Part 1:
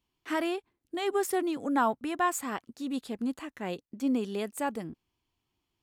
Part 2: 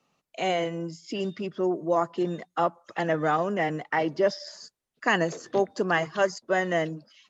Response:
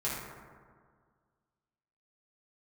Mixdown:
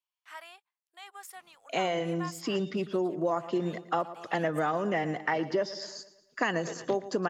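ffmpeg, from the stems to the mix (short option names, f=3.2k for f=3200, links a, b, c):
-filter_complex "[0:a]highpass=f=780:w=0.5412,highpass=f=780:w=1.3066,volume=-10.5dB[a];[1:a]adelay=1350,volume=1.5dB,asplit=2[b][c];[c]volume=-18dB,aecho=0:1:114|228|342|456|570|684|798:1|0.47|0.221|0.104|0.0488|0.0229|0.0108[d];[a][b][d]amix=inputs=3:normalize=0,acompressor=threshold=-25dB:ratio=6"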